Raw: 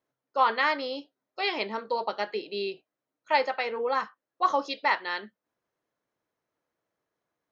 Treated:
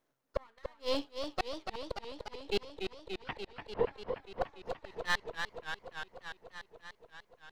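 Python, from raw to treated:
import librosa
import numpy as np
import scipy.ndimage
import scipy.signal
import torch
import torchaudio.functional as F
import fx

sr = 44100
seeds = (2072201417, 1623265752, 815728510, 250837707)

y = np.where(x < 0.0, 10.0 ** (-12.0 / 20.0) * x, x)
y = fx.gate_flip(y, sr, shuts_db=-24.0, range_db=-39)
y = fx.lpc_vocoder(y, sr, seeds[0], excitation='whisper', order=10, at=(2.61, 3.92))
y = fx.echo_warbled(y, sr, ms=292, feedback_pct=75, rate_hz=2.8, cents=118, wet_db=-6.5)
y = F.gain(torch.from_numpy(y), 6.5).numpy()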